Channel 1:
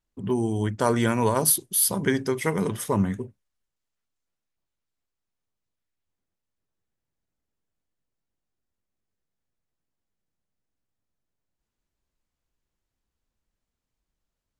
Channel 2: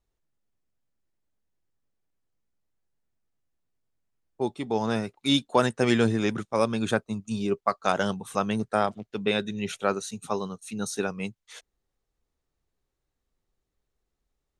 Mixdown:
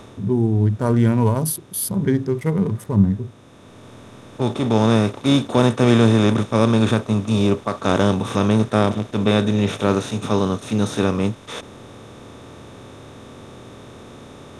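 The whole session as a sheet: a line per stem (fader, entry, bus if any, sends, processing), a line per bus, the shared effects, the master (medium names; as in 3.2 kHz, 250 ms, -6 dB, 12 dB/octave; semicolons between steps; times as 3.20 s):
+1.5 dB, 0.00 s, no send, local Wiener filter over 15 samples
+1.0 dB, 0.00 s, no send, spectral levelling over time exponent 0.4; auto duck -7 dB, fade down 0.25 s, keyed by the first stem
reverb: none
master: harmonic-percussive split percussive -8 dB; bass shelf 250 Hz +11.5 dB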